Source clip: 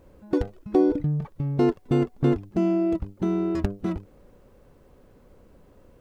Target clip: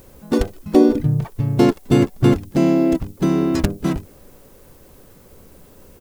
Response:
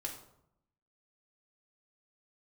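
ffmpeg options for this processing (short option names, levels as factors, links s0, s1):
-filter_complex "[0:a]asplit=3[s0][s1][s2];[s1]asetrate=35002,aresample=44100,atempo=1.25992,volume=0.708[s3];[s2]asetrate=55563,aresample=44100,atempo=0.793701,volume=0.141[s4];[s0][s3][s4]amix=inputs=3:normalize=0,crystalizer=i=4:c=0,volume=1.78"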